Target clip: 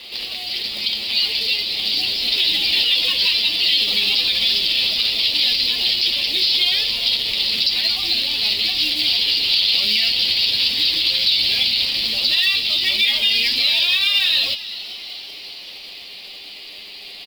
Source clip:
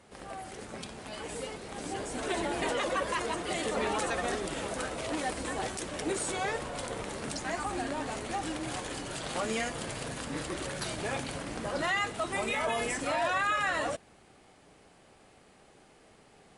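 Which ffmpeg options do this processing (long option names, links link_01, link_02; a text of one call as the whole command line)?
ffmpeg -i in.wav -filter_complex "[0:a]equalizer=frequency=130:width_type=o:width=0.98:gain=-12.5,acrossover=split=220|3000[link_01][link_02][link_03];[link_02]acompressor=threshold=-52dB:ratio=3[link_04];[link_01][link_04][link_03]amix=inputs=3:normalize=0,aresample=11025,asoftclip=type=tanh:threshold=-37.5dB,aresample=44100,flanger=delay=8.1:depth=1.6:regen=17:speed=0.16:shape=sinusoidal,acrusher=bits=8:mode=log:mix=0:aa=0.000001,aexciter=amount=11.2:drive=8.7:freq=2500,asplit=7[link_05][link_06][link_07][link_08][link_09][link_10][link_11];[link_06]adelay=369,afreqshift=130,volume=-16dB[link_12];[link_07]adelay=738,afreqshift=260,volume=-20.4dB[link_13];[link_08]adelay=1107,afreqshift=390,volume=-24.9dB[link_14];[link_09]adelay=1476,afreqshift=520,volume=-29.3dB[link_15];[link_10]adelay=1845,afreqshift=650,volume=-33.7dB[link_16];[link_11]adelay=2214,afreqshift=780,volume=-38.2dB[link_17];[link_05][link_12][link_13][link_14][link_15][link_16][link_17]amix=inputs=7:normalize=0,asetrate=42336,aresample=44100,alimiter=level_in=18.5dB:limit=-1dB:release=50:level=0:latency=1,volume=-6.5dB" out.wav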